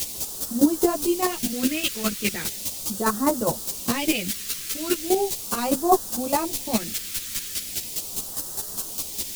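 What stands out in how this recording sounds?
a quantiser's noise floor 6-bit, dither triangular; phasing stages 2, 0.38 Hz, lowest notch 780–2200 Hz; chopped level 4.9 Hz, depth 65%, duty 15%; a shimmering, thickened sound

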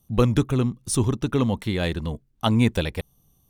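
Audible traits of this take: noise floor -64 dBFS; spectral tilt -6.5 dB/oct

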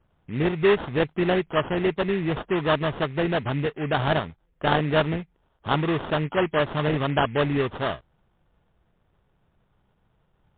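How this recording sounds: aliases and images of a low sample rate 2300 Hz, jitter 20%; MP3

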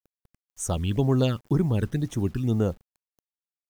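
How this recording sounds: phasing stages 12, 2 Hz, lowest notch 650–4300 Hz; a quantiser's noise floor 10-bit, dither none

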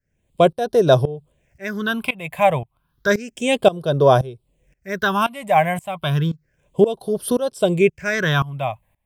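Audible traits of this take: phasing stages 6, 0.31 Hz, lowest notch 380–2200 Hz; tremolo saw up 1.9 Hz, depth 90%

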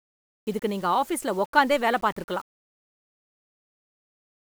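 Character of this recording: a quantiser's noise floor 8-bit, dither none

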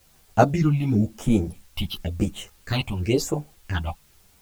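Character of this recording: phasing stages 6, 0.96 Hz, lowest notch 420–4900 Hz; a quantiser's noise floor 10-bit, dither triangular; a shimmering, thickened sound

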